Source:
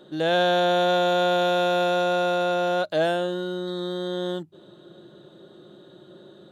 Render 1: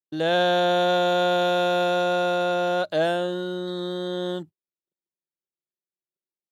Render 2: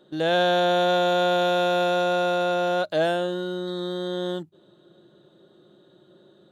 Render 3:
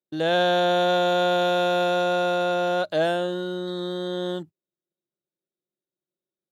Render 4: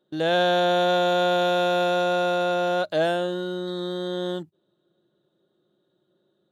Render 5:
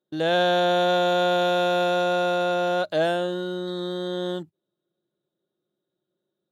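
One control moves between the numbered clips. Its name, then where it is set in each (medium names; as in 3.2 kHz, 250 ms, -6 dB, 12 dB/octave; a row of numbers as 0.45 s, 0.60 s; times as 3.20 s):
gate, range: -59 dB, -7 dB, -47 dB, -22 dB, -34 dB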